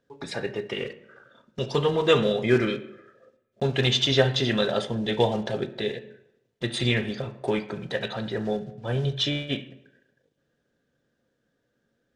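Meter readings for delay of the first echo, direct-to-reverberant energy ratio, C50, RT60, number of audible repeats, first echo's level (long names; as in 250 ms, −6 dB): no echo audible, 9.0 dB, 15.0 dB, 0.85 s, no echo audible, no echo audible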